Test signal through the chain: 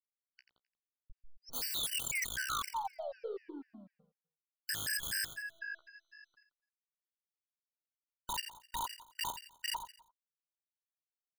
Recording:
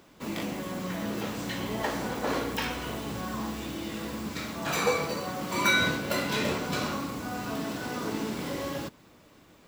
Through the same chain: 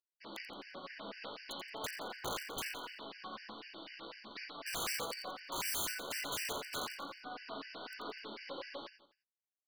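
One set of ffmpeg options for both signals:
ffmpeg -i in.wav -filter_complex "[0:a]highpass=460,aemphasis=mode=production:type=50fm,aeval=exprs='0.398*(cos(1*acos(clip(val(0)/0.398,-1,1)))-cos(1*PI/2))+0.0708*(cos(2*acos(clip(val(0)/0.398,-1,1)))-cos(2*PI/2))':channel_layout=same,aresample=11025,aeval=exprs='sgn(val(0))*max(abs(val(0))-0.00422,0)':channel_layout=same,aresample=44100,flanger=delay=6.7:depth=9.2:regen=-20:speed=1.1:shape=sinusoidal,aeval=exprs='(mod(25.1*val(0)+1,2)-1)/25.1':channel_layout=same,asplit=2[link_01][link_02];[link_02]aecho=0:1:86|172|258|344:0.335|0.127|0.0484|0.0184[link_03];[link_01][link_03]amix=inputs=2:normalize=0,afftfilt=real='re*gt(sin(2*PI*4*pts/sr)*(1-2*mod(floor(b*sr/1024/1500),2)),0)':imag='im*gt(sin(2*PI*4*pts/sr)*(1-2*mod(floor(b*sr/1024/1500),2)),0)':win_size=1024:overlap=0.75,volume=-1.5dB" out.wav

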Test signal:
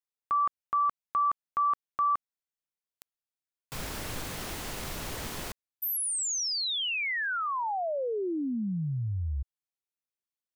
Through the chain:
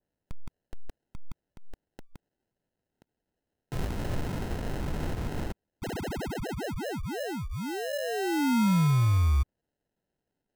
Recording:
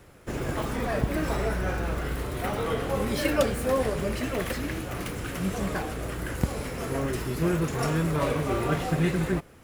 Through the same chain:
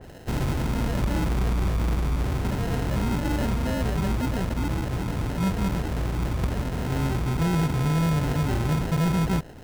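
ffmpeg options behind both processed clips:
ffmpeg -i in.wav -filter_complex "[0:a]acrossover=split=260[link_01][link_02];[link_02]acompressor=threshold=-42dB:ratio=6:attack=0.16:release=38:knee=2.83:detection=peak[link_03];[link_01][link_03]amix=inputs=2:normalize=0,acrusher=samples=38:mix=1:aa=0.000001,volume=29dB,asoftclip=hard,volume=-29dB,adynamicequalizer=threshold=0.00178:dfrequency=2600:dqfactor=0.7:tfrequency=2600:tqfactor=0.7:attack=5:release=100:ratio=0.375:range=1.5:mode=cutabove:tftype=highshelf,volume=9dB" out.wav

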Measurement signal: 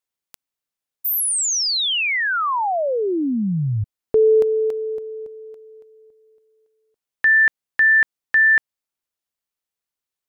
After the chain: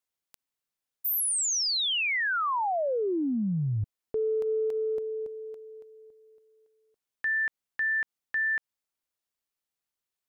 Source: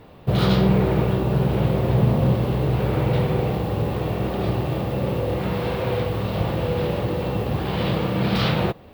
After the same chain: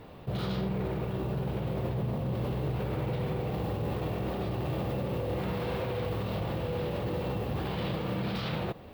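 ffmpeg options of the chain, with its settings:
ffmpeg -i in.wav -af "areverse,acompressor=threshold=-25dB:ratio=4:attack=5:release=89:knee=1:detection=peak,areverse,alimiter=limit=-22dB:level=0:latency=1:release=62,volume=-2dB" out.wav

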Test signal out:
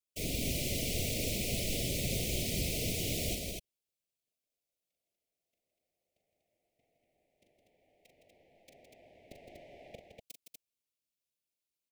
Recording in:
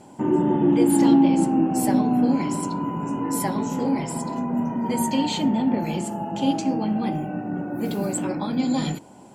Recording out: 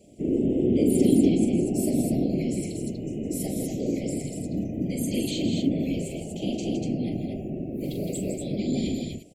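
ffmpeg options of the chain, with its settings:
ffmpeg -i in.wav -af "afftfilt=real='hypot(re,im)*cos(2*PI*random(0))':imag='hypot(re,im)*sin(2*PI*random(1))':win_size=512:overlap=0.75,asuperstop=centerf=1200:order=12:qfactor=0.81,aecho=1:1:40.82|163.3|242:0.447|0.447|0.631" out.wav

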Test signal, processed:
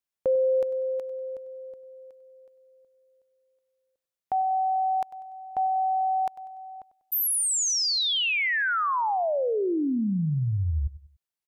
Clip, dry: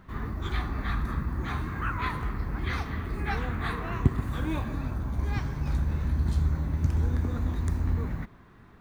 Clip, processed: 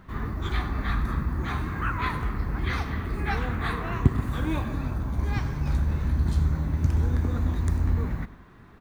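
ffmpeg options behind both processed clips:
ffmpeg -i in.wav -af "aecho=1:1:97|194|291:0.141|0.0551|0.0215,volume=2.5dB" out.wav

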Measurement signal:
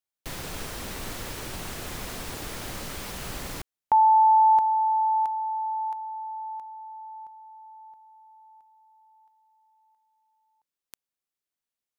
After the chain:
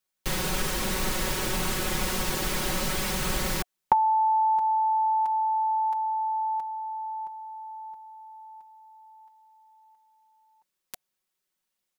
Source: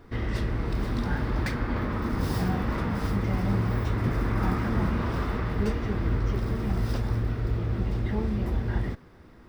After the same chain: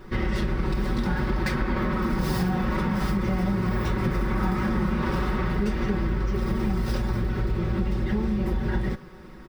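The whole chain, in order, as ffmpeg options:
ffmpeg -i in.wav -af "aecho=1:1:5.4:0.82,acompressor=threshold=-32dB:ratio=4:attack=56:release=90:knee=1:detection=peak,asuperstop=centerf=680:order=4:qfactor=7.5,volume=5.5dB" out.wav

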